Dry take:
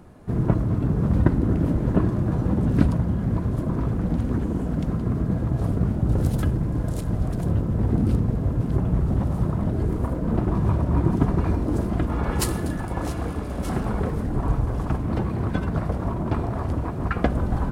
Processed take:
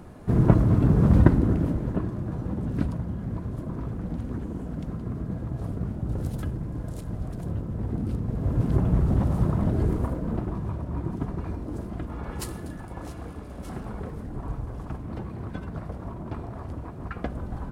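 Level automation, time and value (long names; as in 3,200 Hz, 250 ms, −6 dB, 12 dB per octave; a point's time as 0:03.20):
0:01.19 +3 dB
0:02.02 −8 dB
0:08.19 −8 dB
0:08.59 0 dB
0:09.88 0 dB
0:10.68 −10 dB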